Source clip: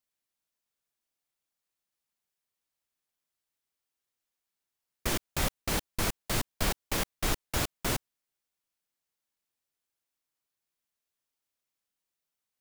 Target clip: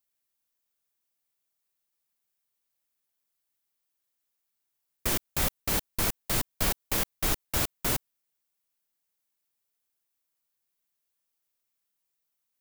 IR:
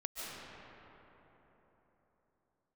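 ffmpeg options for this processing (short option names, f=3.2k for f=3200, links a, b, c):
-af "highshelf=f=11k:g=10"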